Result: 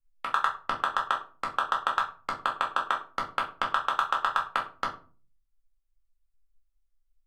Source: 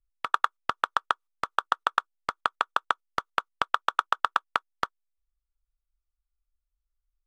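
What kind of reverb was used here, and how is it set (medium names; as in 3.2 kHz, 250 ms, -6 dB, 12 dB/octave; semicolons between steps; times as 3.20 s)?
simulated room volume 210 m³, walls furnished, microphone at 2.2 m; trim -4.5 dB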